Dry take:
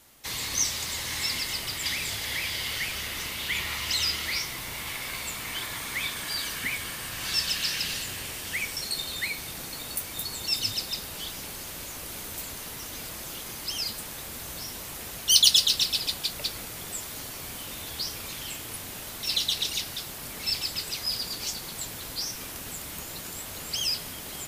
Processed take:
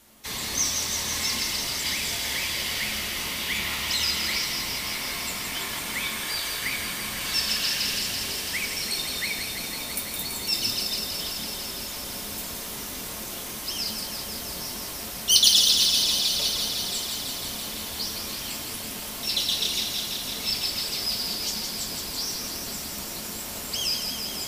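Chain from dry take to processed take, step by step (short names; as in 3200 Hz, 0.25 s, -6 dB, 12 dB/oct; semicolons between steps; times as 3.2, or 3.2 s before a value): 6.2–6.72 bell 230 Hz -13 dB 0.35 oct; thin delay 0.167 s, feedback 83%, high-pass 2100 Hz, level -6 dB; on a send at -2 dB: reverb RT60 0.75 s, pre-delay 3 ms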